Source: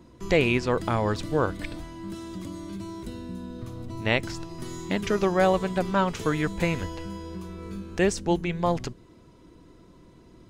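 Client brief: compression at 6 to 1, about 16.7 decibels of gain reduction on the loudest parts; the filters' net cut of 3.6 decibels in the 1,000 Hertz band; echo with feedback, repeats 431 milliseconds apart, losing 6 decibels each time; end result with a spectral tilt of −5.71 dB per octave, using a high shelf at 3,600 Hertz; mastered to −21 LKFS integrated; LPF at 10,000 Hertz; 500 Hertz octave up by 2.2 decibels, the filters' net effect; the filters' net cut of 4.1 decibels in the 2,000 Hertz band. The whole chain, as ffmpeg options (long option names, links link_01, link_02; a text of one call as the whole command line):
ffmpeg -i in.wav -af "lowpass=10000,equalizer=frequency=500:width_type=o:gain=4,equalizer=frequency=1000:width_type=o:gain=-5.5,equalizer=frequency=2000:width_type=o:gain=-5.5,highshelf=frequency=3600:gain=5,acompressor=threshold=-34dB:ratio=6,aecho=1:1:431|862|1293|1724|2155|2586:0.501|0.251|0.125|0.0626|0.0313|0.0157,volume=16.5dB" out.wav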